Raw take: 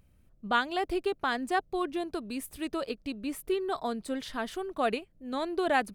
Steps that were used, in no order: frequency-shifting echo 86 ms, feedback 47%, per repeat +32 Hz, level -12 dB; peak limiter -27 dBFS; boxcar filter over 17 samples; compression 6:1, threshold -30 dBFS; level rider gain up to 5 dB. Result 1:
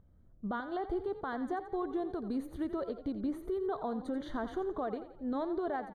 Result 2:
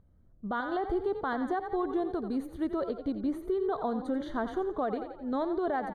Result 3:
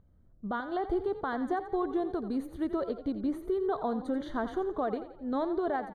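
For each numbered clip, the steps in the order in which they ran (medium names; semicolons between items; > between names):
level rider > compression > boxcar filter > peak limiter > frequency-shifting echo; boxcar filter > frequency-shifting echo > compression > peak limiter > level rider; compression > boxcar filter > peak limiter > level rider > frequency-shifting echo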